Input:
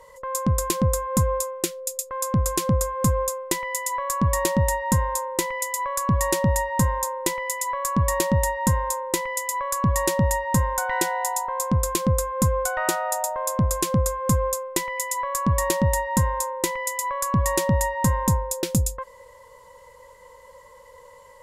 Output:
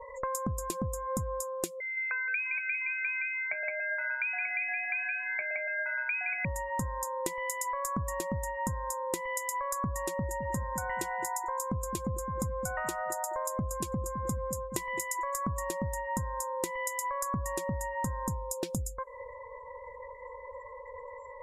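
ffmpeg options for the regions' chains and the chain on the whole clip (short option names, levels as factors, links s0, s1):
-filter_complex "[0:a]asettb=1/sr,asplit=3[s0][s1][s2];[s0]atrim=end=1.804[s3];[s1]atrim=start=1.8:end=6.45,asetpts=PTS-STARTPTS,afade=t=in:d=0.004:c=qsin,afade=t=out:st=4.646:d=0.004:c=qsin,aecho=1:1:168:0.668,atrim=end_sample=205065,lowpass=f=2200:t=q:w=0.5098,lowpass=f=2200:t=q:w=0.6013,lowpass=f=2200:t=q:w=0.9,lowpass=f=2200:t=q:w=2.563,afreqshift=-2600[s4];[s2]atrim=start=6.446[s5];[s3][s4]acrossfade=d=0.004:c1=hsin:c2=qsin[s6];[s6][s5]acrossfade=d=0.004:c1=qsin:c2=hsin,asettb=1/sr,asplit=3[s7][s8][s9];[s7]atrim=end=10.024[s10];[s8]atrim=start=10.02:end=15.66,asetpts=PTS-STARTPTS,afade=t=in:d=0.004:c=qsin,afade=t=out:st=5.636:d=0.004:c=qsin,aeval=exprs='clip(val(0),-1,0.224)':c=same,asplit=2[s11][s12];[s12]adelay=213,lowpass=f=2600:p=1,volume=0.282,asplit=2[s13][s14];[s14]adelay=213,lowpass=f=2600:p=1,volume=0.3,asplit=2[s15][s16];[s16]adelay=213,lowpass=f=2600:p=1,volume=0.3[s17];[s11][s13][s15][s17]amix=inputs=4:normalize=0,atrim=end_sample=248724[s18];[s9]atrim=start=15.656[s19];[s10][s18]acrossfade=d=0.004:c1=hsin:c2=qsin[s20];[s20][s19]acrossfade=d=0.004:c1=qsin:c2=hsin,acompressor=threshold=0.02:ratio=20,afftdn=nr=36:nf=-49,volume=1.58"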